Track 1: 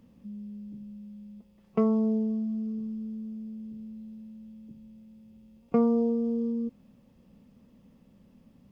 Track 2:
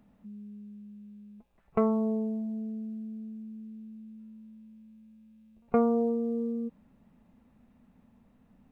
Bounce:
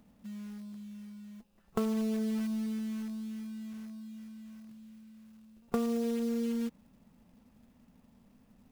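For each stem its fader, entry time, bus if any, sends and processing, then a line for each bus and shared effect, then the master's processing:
-5.5 dB, 0.00 s, no send, treble shelf 2 kHz +11 dB; upward expansion 1.5:1, over -35 dBFS
-1.0 dB, 0.00 s, no send, none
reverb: none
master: short-mantissa float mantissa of 2-bit; compression 4:1, threshold -29 dBFS, peak gain reduction 9.5 dB

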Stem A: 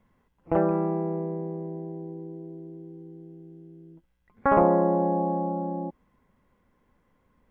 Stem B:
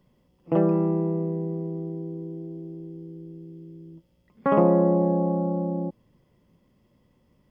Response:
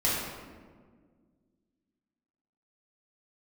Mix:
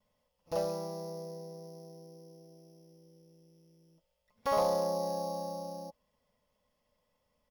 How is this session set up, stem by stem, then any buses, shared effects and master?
-14.0 dB, 0.00 s, no send, sorted samples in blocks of 8 samples; overload inside the chain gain 15.5 dB; high-order bell 730 Hz -9 dB 2.6 oct
-4.0 dB, 5.4 ms, no send, elliptic high-pass 510 Hz, stop band 40 dB; peaking EQ 1.7 kHz -5 dB 1.9 oct; comb 4.7 ms, depth 39%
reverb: none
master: none

